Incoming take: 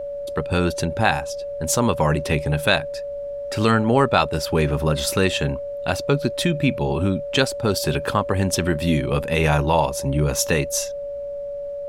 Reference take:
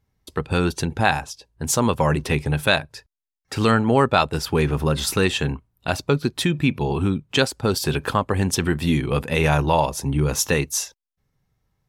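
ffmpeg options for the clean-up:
-af "bandreject=f=570:w=30,agate=range=-21dB:threshold=-22dB"

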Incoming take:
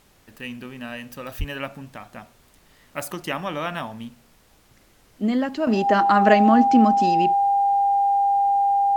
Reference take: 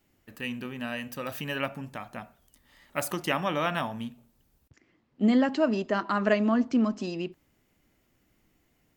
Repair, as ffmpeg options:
-filter_complex "[0:a]bandreject=f=800:w=30,asplit=3[a][b][c];[a]afade=t=out:st=1.38:d=0.02[d];[b]highpass=f=140:w=0.5412,highpass=f=140:w=1.3066,afade=t=in:st=1.38:d=0.02,afade=t=out:st=1.5:d=0.02[e];[c]afade=t=in:st=1.5:d=0.02[f];[d][e][f]amix=inputs=3:normalize=0,agate=range=-21dB:threshold=-48dB,asetnsamples=n=441:p=0,asendcmd='5.67 volume volume -7.5dB',volume=0dB"

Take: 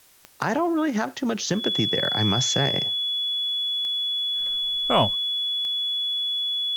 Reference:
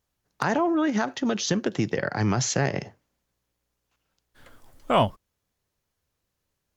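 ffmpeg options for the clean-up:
-af "adeclick=t=4,bandreject=f=3.4k:w=30,agate=range=-21dB:threshold=-22dB"

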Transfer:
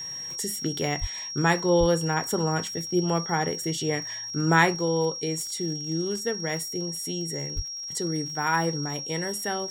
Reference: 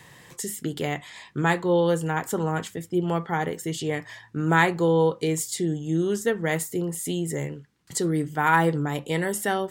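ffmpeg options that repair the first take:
-filter_complex "[0:a]adeclick=t=4,bandreject=f=5.6k:w=30,asplit=3[a][b][c];[a]afade=t=out:st=1:d=0.02[d];[b]highpass=f=140:w=0.5412,highpass=f=140:w=1.3066,afade=t=in:st=1:d=0.02,afade=t=out:st=1.12:d=0.02[e];[c]afade=t=in:st=1.12:d=0.02[f];[d][e][f]amix=inputs=3:normalize=0,asplit=3[g][h][i];[g]afade=t=out:st=1.79:d=0.02[j];[h]highpass=f=140:w=0.5412,highpass=f=140:w=1.3066,afade=t=in:st=1.79:d=0.02,afade=t=out:st=1.91:d=0.02[k];[i]afade=t=in:st=1.91:d=0.02[l];[j][k][l]amix=inputs=3:normalize=0,asplit=3[m][n][o];[m]afade=t=out:st=7.55:d=0.02[p];[n]highpass=f=140:w=0.5412,highpass=f=140:w=1.3066,afade=t=in:st=7.55:d=0.02,afade=t=out:st=7.67:d=0.02[q];[o]afade=t=in:st=7.67:d=0.02[r];[p][q][r]amix=inputs=3:normalize=0,asetnsamples=n=441:p=0,asendcmd='4.75 volume volume 5dB',volume=0dB"

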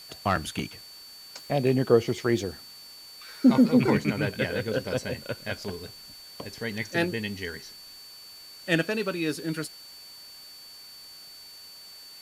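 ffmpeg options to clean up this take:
-af "bandreject=f=4.5k:w=30,afwtdn=0.0028"

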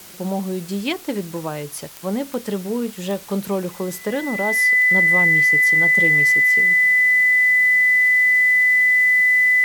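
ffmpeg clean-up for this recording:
-af "adeclick=t=4,bandreject=f=2k:w=30,afwtdn=0.0089"

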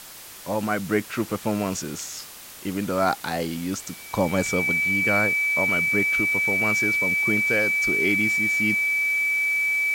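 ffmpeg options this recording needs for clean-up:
-af "bandreject=f=2.3k:w=30,afwtdn=0.0089"

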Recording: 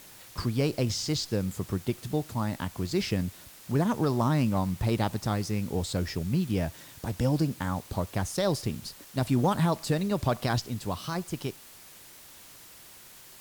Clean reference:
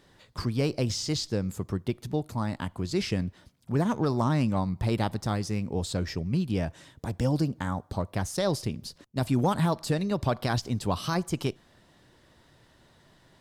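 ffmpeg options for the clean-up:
-af "afwtdn=0.0032,asetnsamples=n=441:p=0,asendcmd='10.65 volume volume 4.5dB',volume=0dB"

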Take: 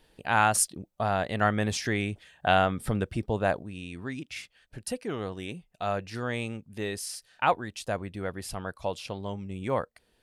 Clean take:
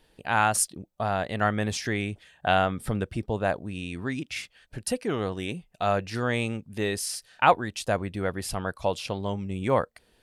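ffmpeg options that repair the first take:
-af "asetnsamples=n=441:p=0,asendcmd='3.63 volume volume 5dB',volume=0dB"

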